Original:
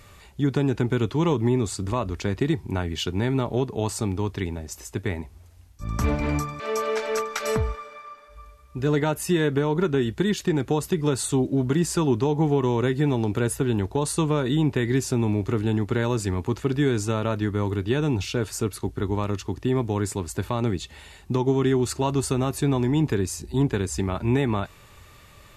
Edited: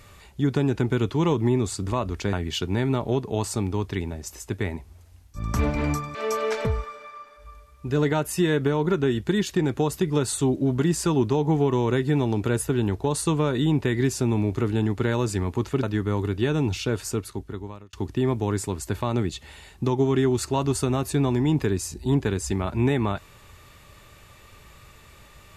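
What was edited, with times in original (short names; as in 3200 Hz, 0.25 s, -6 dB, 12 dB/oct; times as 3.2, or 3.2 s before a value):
2.33–2.78 cut
7.1–7.56 cut
16.74–17.31 cut
18.5–19.41 fade out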